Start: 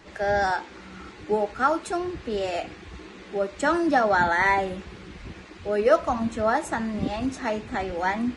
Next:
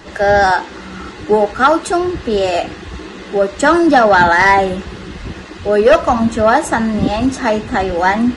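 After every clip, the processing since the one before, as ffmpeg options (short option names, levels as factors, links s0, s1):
-af "aeval=exprs='0.447*sin(PI/2*1.78*val(0)/0.447)':c=same,bandreject=f=2300:w=8.1,volume=1.58"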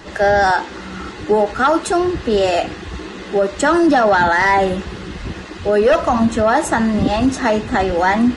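-af "alimiter=limit=0.447:level=0:latency=1:release=33"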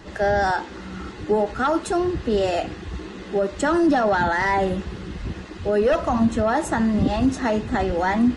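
-af "lowshelf=f=330:g=6.5,volume=0.398"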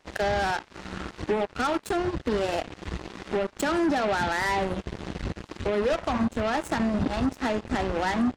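-af "acompressor=threshold=0.0251:ratio=2.5,aeval=exprs='0.0944*(cos(1*acos(clip(val(0)/0.0944,-1,1)))-cos(1*PI/2))+0.015*(cos(7*acos(clip(val(0)/0.0944,-1,1)))-cos(7*PI/2))':c=same,volume=1.5"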